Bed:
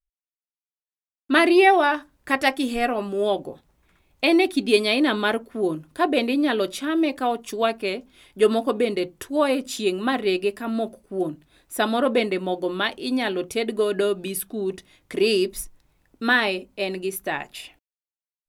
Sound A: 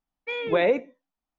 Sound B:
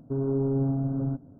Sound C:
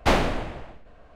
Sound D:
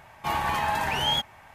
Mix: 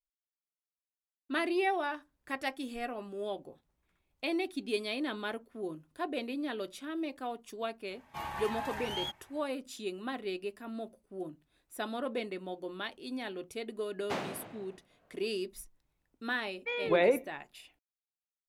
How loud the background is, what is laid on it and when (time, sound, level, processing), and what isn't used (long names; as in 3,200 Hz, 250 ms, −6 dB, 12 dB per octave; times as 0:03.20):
bed −15 dB
0:07.90: mix in D −12.5 dB
0:14.04: mix in C −15 dB + high-pass filter 120 Hz 24 dB per octave
0:16.39: mix in A −4.5 dB
not used: B